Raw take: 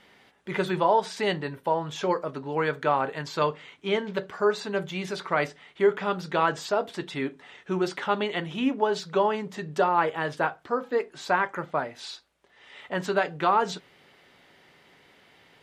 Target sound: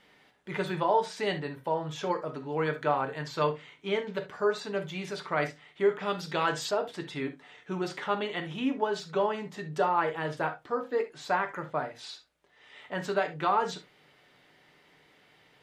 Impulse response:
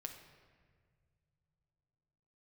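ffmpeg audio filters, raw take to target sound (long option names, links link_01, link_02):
-filter_complex "[1:a]atrim=start_sample=2205,atrim=end_sample=3528[link_01];[0:a][link_01]afir=irnorm=-1:irlink=0,asettb=1/sr,asplit=3[link_02][link_03][link_04];[link_02]atrim=end=5.974[link_05];[link_03]atrim=start=5.97:end=6.71,asetpts=PTS-STARTPTS,afade=type=in:duration=0.004:curve=qsin,afade=type=out:start_time=0.736:duration=0.004:curve=qsin,adynamicequalizer=threshold=0.00708:dfrequency=2300:dqfactor=0.7:tfrequency=2300:tqfactor=0.7:attack=5:release=100:ratio=0.375:range=3.5:mode=boostabove:tftype=highshelf[link_06];[link_04]atrim=start=6.706[link_07];[link_05][link_06]acrossfade=duration=0.004:curve1=hsin:curve2=qsin[link_08];[link_08][link_07]acrossfade=duration=0.004:curve1=qsin:curve2=hsin"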